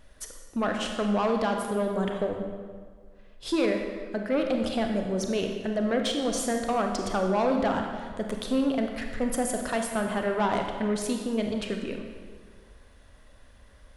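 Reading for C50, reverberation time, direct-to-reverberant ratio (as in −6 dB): 4.0 dB, 1.7 s, 3.0 dB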